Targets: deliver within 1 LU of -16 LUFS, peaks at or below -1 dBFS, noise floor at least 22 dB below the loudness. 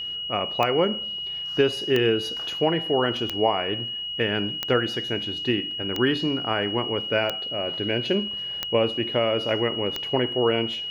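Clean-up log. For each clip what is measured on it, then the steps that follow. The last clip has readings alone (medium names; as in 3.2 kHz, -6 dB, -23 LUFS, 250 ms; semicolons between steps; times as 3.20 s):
clicks found 8; steady tone 2.9 kHz; tone level -29 dBFS; loudness -24.5 LUFS; peak level -7.0 dBFS; loudness target -16.0 LUFS
-> de-click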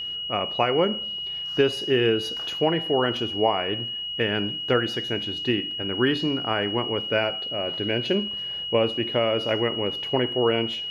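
clicks found 0; steady tone 2.9 kHz; tone level -29 dBFS
-> band-stop 2.9 kHz, Q 30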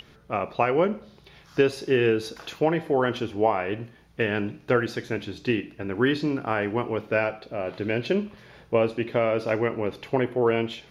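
steady tone not found; loudness -26.0 LUFS; peak level -7.0 dBFS; loudness target -16.0 LUFS
-> trim +10 dB; peak limiter -1 dBFS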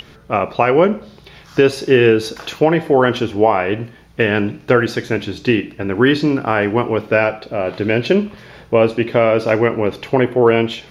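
loudness -16.5 LUFS; peak level -1.0 dBFS; noise floor -44 dBFS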